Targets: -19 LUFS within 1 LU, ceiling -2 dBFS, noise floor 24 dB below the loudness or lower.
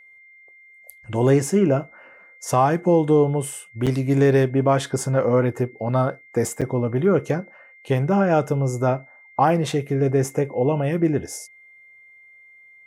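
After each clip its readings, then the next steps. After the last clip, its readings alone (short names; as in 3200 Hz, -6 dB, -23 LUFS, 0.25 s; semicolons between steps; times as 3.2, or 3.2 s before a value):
dropouts 2; longest dropout 6.9 ms; steady tone 2100 Hz; tone level -47 dBFS; loudness -21.0 LUFS; peak -7.0 dBFS; loudness target -19.0 LUFS
-> interpolate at 3.86/6.61, 6.9 ms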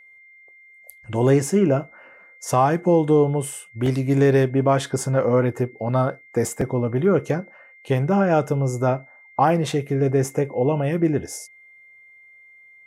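dropouts 0; steady tone 2100 Hz; tone level -47 dBFS
-> notch 2100 Hz, Q 30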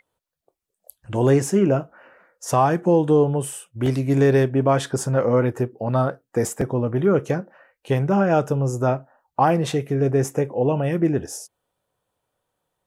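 steady tone none; loudness -21.0 LUFS; peak -7.0 dBFS; loudness target -19.0 LUFS
-> gain +2 dB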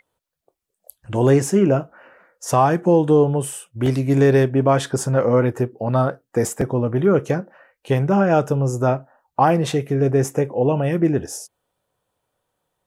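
loudness -19.0 LUFS; peak -5.0 dBFS; noise floor -81 dBFS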